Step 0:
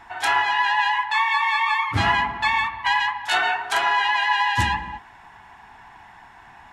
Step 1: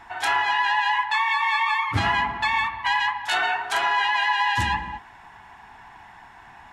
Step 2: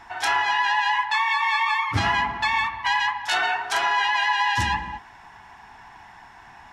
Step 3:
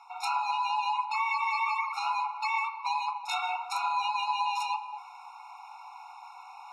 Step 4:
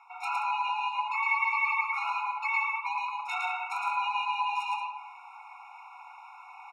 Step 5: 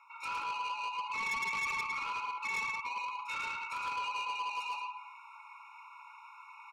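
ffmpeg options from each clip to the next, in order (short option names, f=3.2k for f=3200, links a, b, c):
-af "alimiter=limit=-12.5dB:level=0:latency=1:release=111"
-af "equalizer=f=5.5k:w=3:g=7"
-af "areverse,acompressor=mode=upward:threshold=-31dB:ratio=2.5,areverse,afftfilt=real='re*eq(mod(floor(b*sr/1024/720),2),1)':imag='im*eq(mod(floor(b*sr/1024/720),2),1)':win_size=1024:overlap=0.75,volume=-5.5dB"
-af "firequalizer=gain_entry='entry(820,0);entry(2000,10);entry(4400,-11);entry(6300,-5)':delay=0.05:min_phase=1,aecho=1:1:110.8|177.8:0.708|0.282,volume=-4.5dB"
-af "asoftclip=type=tanh:threshold=-28.5dB,asuperstop=centerf=750:order=4:qfactor=2.6,volume=-2dB"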